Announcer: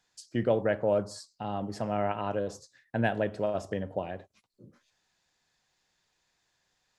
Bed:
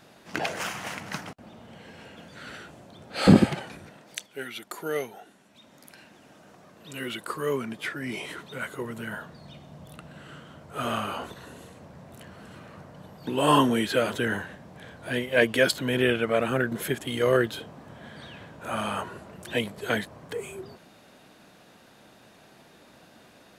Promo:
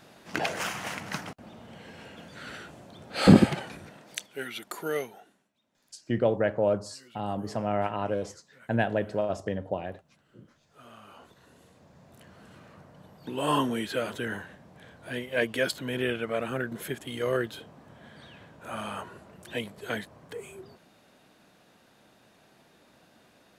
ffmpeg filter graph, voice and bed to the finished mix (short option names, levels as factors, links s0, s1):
-filter_complex "[0:a]adelay=5750,volume=1.19[s0];[1:a]volume=6.31,afade=t=out:st=4.87:d=0.65:silence=0.0794328,afade=t=in:st=10.97:d=1.47:silence=0.158489[s1];[s0][s1]amix=inputs=2:normalize=0"